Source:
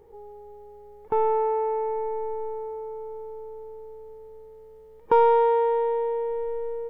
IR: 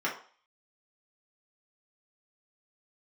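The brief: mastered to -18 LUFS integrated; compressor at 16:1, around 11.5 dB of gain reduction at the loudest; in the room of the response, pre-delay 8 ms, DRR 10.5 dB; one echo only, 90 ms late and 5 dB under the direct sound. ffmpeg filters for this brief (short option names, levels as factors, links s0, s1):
-filter_complex "[0:a]acompressor=threshold=0.0562:ratio=16,aecho=1:1:90:0.562,asplit=2[s0][s1];[1:a]atrim=start_sample=2205,adelay=8[s2];[s1][s2]afir=irnorm=-1:irlink=0,volume=0.112[s3];[s0][s3]amix=inputs=2:normalize=0,volume=3.55"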